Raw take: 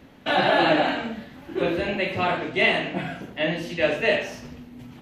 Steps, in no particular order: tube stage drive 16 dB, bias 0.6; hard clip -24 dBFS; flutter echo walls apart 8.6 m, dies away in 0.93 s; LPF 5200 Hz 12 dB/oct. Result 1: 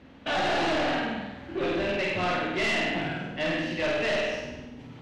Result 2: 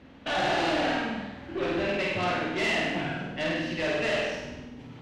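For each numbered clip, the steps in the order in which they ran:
flutter echo > tube stage > hard clip > LPF; hard clip > LPF > tube stage > flutter echo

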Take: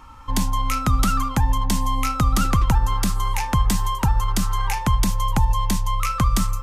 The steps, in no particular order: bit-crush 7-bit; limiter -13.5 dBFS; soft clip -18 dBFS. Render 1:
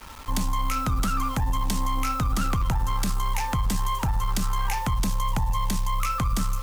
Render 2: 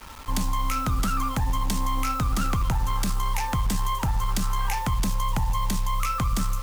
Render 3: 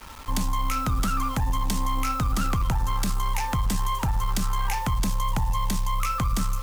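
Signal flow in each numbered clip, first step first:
bit-crush > limiter > soft clip; limiter > soft clip > bit-crush; limiter > bit-crush > soft clip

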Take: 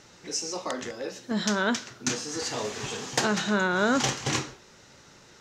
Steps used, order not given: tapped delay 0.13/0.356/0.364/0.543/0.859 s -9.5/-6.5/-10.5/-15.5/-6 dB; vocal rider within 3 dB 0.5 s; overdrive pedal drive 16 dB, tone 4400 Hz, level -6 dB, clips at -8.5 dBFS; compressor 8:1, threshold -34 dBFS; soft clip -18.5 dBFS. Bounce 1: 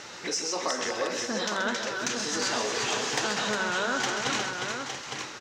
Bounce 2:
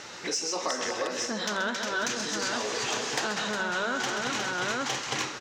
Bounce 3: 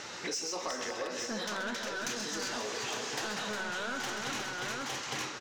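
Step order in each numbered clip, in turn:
vocal rider > compressor > soft clip > overdrive pedal > tapped delay; soft clip > tapped delay > vocal rider > compressor > overdrive pedal; overdrive pedal > soft clip > vocal rider > tapped delay > compressor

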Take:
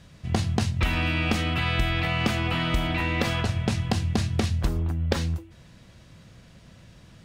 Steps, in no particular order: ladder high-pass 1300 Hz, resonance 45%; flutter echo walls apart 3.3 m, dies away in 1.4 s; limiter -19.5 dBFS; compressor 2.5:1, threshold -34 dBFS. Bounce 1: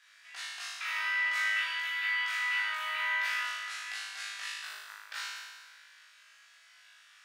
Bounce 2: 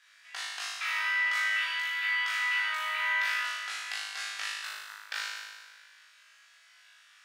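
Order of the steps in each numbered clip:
limiter > ladder high-pass > compressor > flutter echo; ladder high-pass > compressor > flutter echo > limiter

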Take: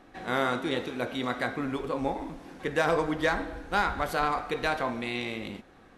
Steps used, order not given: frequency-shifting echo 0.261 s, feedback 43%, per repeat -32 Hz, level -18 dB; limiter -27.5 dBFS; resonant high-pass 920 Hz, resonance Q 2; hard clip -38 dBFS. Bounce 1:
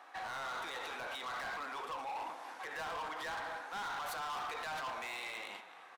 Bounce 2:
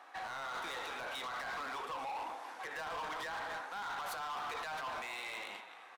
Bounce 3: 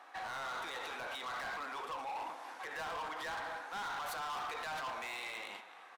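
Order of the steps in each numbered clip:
limiter > resonant high-pass > frequency-shifting echo > hard clip; frequency-shifting echo > resonant high-pass > limiter > hard clip; limiter > frequency-shifting echo > resonant high-pass > hard clip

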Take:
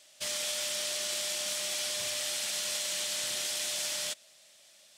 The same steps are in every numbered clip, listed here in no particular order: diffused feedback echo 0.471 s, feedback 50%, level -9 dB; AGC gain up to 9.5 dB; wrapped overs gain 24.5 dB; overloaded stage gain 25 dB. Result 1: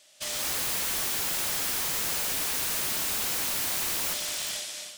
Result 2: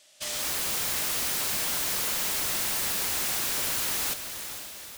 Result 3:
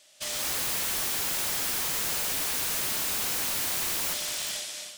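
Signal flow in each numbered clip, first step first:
overloaded stage > diffused feedback echo > AGC > wrapped overs; overloaded stage > AGC > wrapped overs > diffused feedback echo; diffused feedback echo > AGC > wrapped overs > overloaded stage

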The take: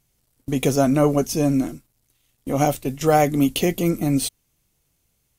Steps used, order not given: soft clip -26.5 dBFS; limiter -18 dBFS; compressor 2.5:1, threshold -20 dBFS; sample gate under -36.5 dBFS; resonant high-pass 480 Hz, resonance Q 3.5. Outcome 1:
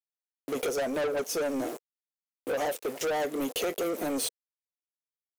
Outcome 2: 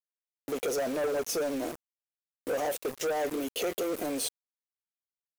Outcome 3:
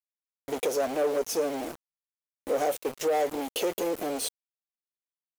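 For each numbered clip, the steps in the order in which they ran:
sample gate > resonant high-pass > compressor > soft clip > limiter; limiter > resonant high-pass > compressor > soft clip > sample gate; compressor > soft clip > resonant high-pass > sample gate > limiter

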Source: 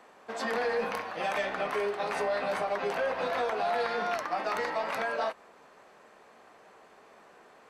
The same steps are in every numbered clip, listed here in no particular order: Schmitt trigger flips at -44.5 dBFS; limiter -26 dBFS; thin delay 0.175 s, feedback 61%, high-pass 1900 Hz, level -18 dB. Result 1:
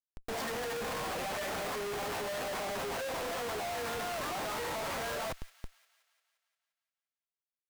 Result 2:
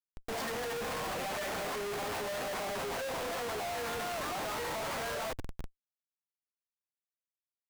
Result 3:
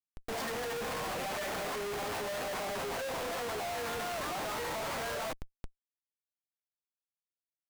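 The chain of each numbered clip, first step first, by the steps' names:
limiter > Schmitt trigger > thin delay; thin delay > limiter > Schmitt trigger; limiter > thin delay > Schmitt trigger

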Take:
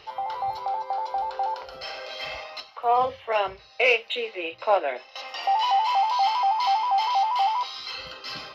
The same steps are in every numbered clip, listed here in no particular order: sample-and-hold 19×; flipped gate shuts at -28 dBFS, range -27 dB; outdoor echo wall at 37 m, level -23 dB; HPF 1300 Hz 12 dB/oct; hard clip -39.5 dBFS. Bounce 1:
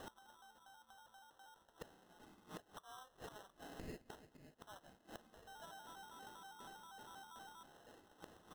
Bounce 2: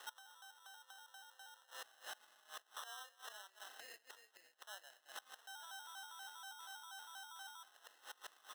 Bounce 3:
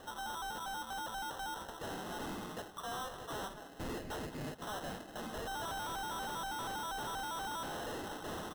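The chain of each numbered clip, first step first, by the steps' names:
flipped gate > outdoor echo > hard clip > HPF > sample-and-hold; outdoor echo > sample-and-hold > flipped gate > hard clip > HPF; HPF > sample-and-hold > outdoor echo > hard clip > flipped gate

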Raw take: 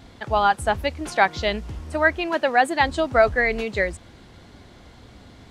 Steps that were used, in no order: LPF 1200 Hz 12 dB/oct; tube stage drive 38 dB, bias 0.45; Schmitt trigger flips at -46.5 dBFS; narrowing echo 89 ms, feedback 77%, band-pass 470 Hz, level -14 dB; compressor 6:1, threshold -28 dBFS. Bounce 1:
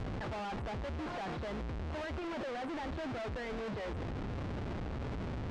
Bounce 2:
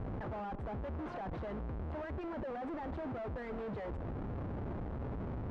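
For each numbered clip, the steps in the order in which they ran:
Schmitt trigger > narrowing echo > compressor > LPF > tube stage; compressor > Schmitt trigger > narrowing echo > tube stage > LPF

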